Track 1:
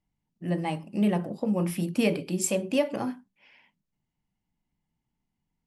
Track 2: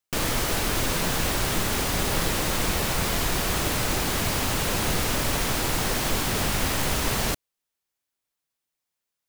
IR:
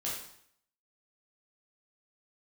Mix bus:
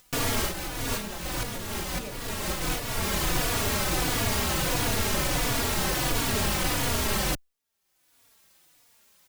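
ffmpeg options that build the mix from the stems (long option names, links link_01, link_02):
-filter_complex "[0:a]deesser=0.9,equalizer=frequency=150:width=0.81:gain=-7.5,volume=-14dB,afade=type=out:start_time=2.24:duration=0.33:silence=0.375837,asplit=2[link_01][link_02];[1:a]asoftclip=type=hard:threshold=-20dB,asplit=2[link_03][link_04];[link_04]adelay=3.5,afreqshift=-1.5[link_05];[link_03][link_05]amix=inputs=2:normalize=1,volume=2.5dB[link_06];[link_02]apad=whole_len=409721[link_07];[link_06][link_07]sidechaincompress=threshold=-51dB:ratio=5:attack=27:release=361[link_08];[link_01][link_08]amix=inputs=2:normalize=0,acompressor=mode=upward:threshold=-40dB:ratio=2.5"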